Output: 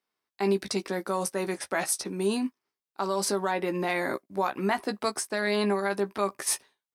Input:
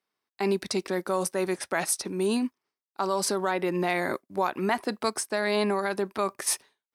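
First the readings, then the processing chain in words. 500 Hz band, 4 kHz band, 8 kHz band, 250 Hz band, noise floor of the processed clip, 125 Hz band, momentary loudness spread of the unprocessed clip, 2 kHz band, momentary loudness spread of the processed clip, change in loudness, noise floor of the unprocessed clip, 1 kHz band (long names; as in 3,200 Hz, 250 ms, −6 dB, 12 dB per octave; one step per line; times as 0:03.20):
−1.0 dB, −1.0 dB, −1.0 dB, −1.0 dB, below −85 dBFS, −0.5 dB, 3 LU, −0.5 dB, 5 LU, −1.0 dB, below −85 dBFS, −1.0 dB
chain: double-tracking delay 15 ms −8 dB
level −1.5 dB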